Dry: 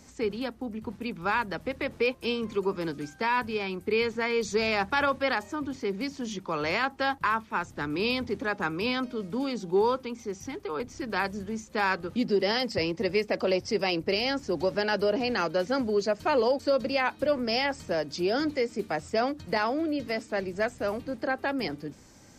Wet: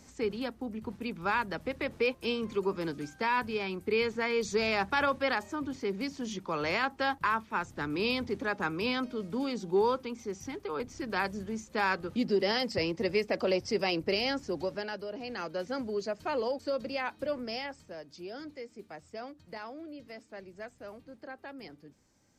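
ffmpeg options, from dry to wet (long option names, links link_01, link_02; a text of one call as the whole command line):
ffmpeg -i in.wav -af "volume=4.5dB,afade=type=out:start_time=14.26:duration=0.79:silence=0.251189,afade=type=in:start_time=15.05:duration=0.61:silence=0.446684,afade=type=out:start_time=17.35:duration=0.54:silence=0.398107" out.wav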